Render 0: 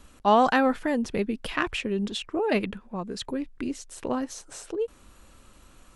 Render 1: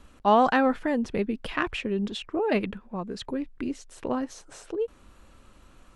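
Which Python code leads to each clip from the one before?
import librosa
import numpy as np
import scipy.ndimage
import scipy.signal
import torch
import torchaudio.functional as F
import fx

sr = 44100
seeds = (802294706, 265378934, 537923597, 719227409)

y = fx.high_shelf(x, sr, hz=5300.0, db=-10.0)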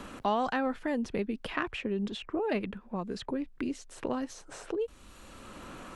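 y = fx.band_squash(x, sr, depth_pct=70)
y = y * 10.0 ** (-5.0 / 20.0)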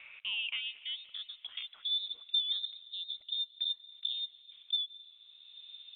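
y = fx.filter_sweep_bandpass(x, sr, from_hz=1600.0, to_hz=330.0, start_s=0.07, end_s=2.31, q=4.6)
y = fx.freq_invert(y, sr, carrier_hz=3900)
y = fx.rev_freeverb(y, sr, rt60_s=3.7, hf_ratio=0.6, predelay_ms=110, drr_db=17.0)
y = y * 10.0 ** (4.0 / 20.0)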